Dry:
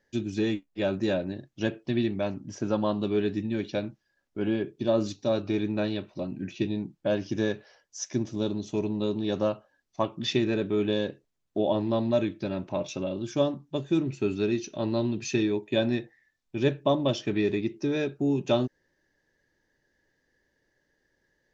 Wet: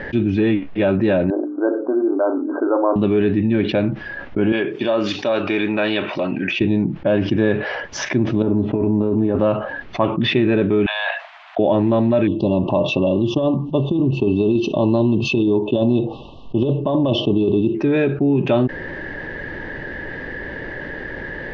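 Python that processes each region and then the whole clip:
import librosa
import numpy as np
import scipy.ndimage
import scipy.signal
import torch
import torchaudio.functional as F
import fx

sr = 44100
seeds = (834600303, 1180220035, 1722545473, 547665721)

y = fx.chain(x, sr, fx.brickwall_bandpass(low_hz=260.0, high_hz=1600.0),
    fx.hum_notches(base_hz=60, count=9), at=(1.3, 2.96))
y = fx.chain(y, sr, fx.highpass(hz=1100.0, slope=6),
    fx.high_shelf(hz=5500.0, db=12.0),
    fx.notch(hz=4000.0, q=9.6), at=(4.52, 6.61))
y = fx.chain(y, sr, fx.lowpass(hz=1300.0, slope=12),
    fx.over_compress(threshold_db=-30.0, ratio=-0.5),
    fx.notch_comb(f0_hz=180.0), at=(8.42, 9.39))
y = fx.chain(y, sr, fx.steep_highpass(hz=650.0, slope=96),
    fx.over_compress(threshold_db=-47.0, ratio=-1.0), at=(10.86, 11.59))
y = fx.chain(y, sr, fx.brickwall_bandstop(low_hz=1200.0, high_hz=2600.0),
    fx.over_compress(threshold_db=-26.0, ratio=-0.5), at=(12.27, 17.75))
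y = scipy.signal.sosfilt(scipy.signal.butter(4, 2800.0, 'lowpass', fs=sr, output='sos'), y)
y = fx.env_flatten(y, sr, amount_pct=70)
y = F.gain(torch.from_numpy(y), 6.0).numpy()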